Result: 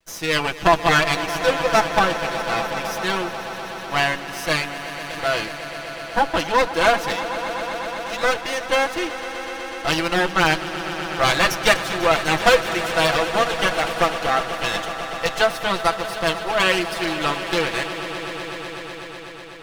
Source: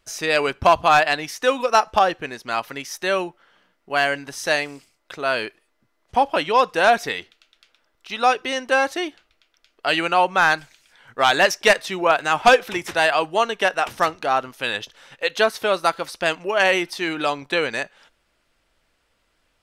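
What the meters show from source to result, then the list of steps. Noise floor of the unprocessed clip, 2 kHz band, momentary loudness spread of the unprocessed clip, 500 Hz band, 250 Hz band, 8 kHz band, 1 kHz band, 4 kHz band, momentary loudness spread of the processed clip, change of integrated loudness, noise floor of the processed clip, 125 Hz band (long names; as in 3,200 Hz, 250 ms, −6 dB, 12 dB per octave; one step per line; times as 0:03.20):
−69 dBFS, +0.5 dB, 11 LU, 0.0 dB, +3.0 dB, +2.5 dB, −1.5 dB, +2.5 dB, 12 LU, −1.0 dB, −34 dBFS, +8.0 dB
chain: lower of the sound and its delayed copy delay 6 ms
echo that builds up and dies away 124 ms, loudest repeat 5, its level −15 dB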